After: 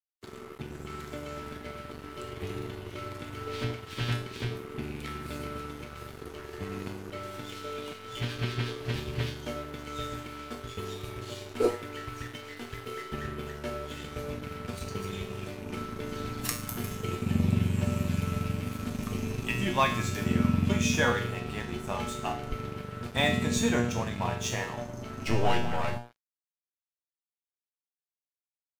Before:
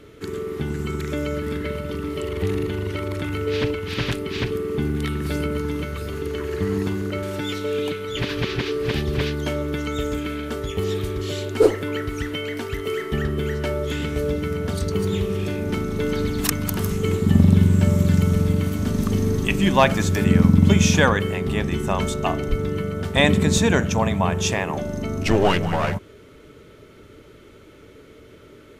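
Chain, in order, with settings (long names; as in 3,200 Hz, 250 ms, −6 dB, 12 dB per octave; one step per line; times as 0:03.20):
loose part that buzzes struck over −21 dBFS, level −25 dBFS
tuned comb filter 120 Hz, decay 0.55 s, harmonics all, mix 90%
dead-zone distortion −46 dBFS
level +4.5 dB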